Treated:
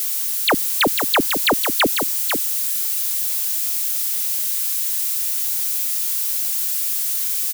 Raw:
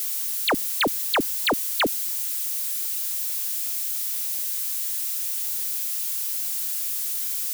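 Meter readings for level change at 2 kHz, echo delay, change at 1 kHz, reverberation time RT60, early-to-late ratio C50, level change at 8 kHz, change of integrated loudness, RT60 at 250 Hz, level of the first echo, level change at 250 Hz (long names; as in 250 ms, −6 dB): +6.0 dB, 497 ms, +6.0 dB, no reverb audible, no reverb audible, +5.5 dB, +6.0 dB, no reverb audible, −7.0 dB, +6.0 dB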